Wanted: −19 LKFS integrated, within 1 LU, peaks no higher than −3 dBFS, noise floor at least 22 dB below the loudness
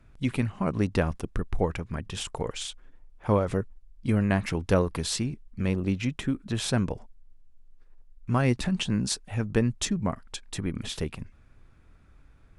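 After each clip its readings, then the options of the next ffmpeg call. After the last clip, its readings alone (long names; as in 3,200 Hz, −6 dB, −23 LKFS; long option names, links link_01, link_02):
integrated loudness −29.0 LKFS; sample peak −9.0 dBFS; target loudness −19.0 LKFS
→ -af "volume=10dB,alimiter=limit=-3dB:level=0:latency=1"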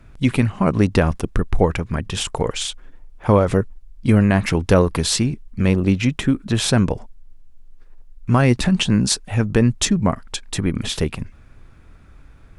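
integrated loudness −19.5 LKFS; sample peak −3.0 dBFS; background noise floor −46 dBFS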